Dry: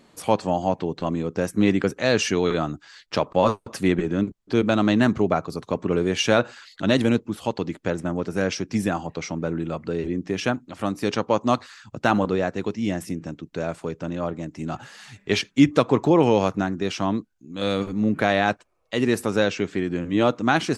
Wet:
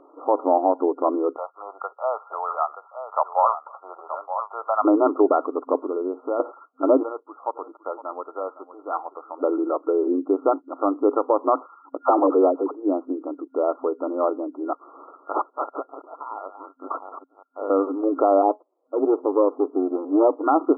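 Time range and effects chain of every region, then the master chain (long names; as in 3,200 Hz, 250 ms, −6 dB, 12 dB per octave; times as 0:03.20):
0:01.36–0:04.85: Butterworth high-pass 710 Hz + single-tap delay 927 ms −10 dB
0:05.80–0:06.40: Gaussian smoothing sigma 3.8 samples + downward compressor 2.5 to 1, threshold −31 dBFS
0:07.03–0:09.42: high-pass filter 1,000 Hz + single-tap delay 511 ms −15 dB
0:12.03–0:12.71: low-pass filter 1,600 Hz + all-pass dispersion lows, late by 72 ms, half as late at 570 Hz
0:14.73–0:17.70: delay that plays each chunk backwards 193 ms, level −9.5 dB + voice inversion scrambler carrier 4,000 Hz
0:18.42–0:20.44: lower of the sound and its delayed copy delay 0.34 ms + low-pass filter 1,100 Hz 24 dB per octave + tuned comb filter 210 Hz, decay 0.17 s, mix 30%
whole clip: brick-wall band-pass 260–1,400 Hz; boost into a limiter +13.5 dB; level −6.5 dB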